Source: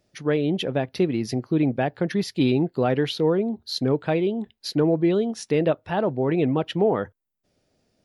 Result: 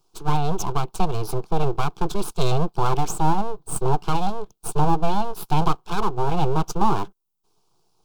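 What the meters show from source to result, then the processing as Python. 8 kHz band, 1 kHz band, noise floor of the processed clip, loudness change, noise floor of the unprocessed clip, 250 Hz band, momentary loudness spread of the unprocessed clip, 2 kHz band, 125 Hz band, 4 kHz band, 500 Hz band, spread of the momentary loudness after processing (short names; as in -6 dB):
+8.5 dB, +9.5 dB, -66 dBFS, -1.5 dB, -75 dBFS, -5.5 dB, 5 LU, -4.0 dB, +2.0 dB, -3.0 dB, -5.5 dB, 6 LU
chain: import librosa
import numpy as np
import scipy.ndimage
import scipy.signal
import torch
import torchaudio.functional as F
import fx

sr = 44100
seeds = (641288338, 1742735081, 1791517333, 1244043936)

y = np.abs(x)
y = fx.fixed_phaser(y, sr, hz=380.0, stages=8)
y = F.gain(torch.from_numpy(y), 6.0).numpy()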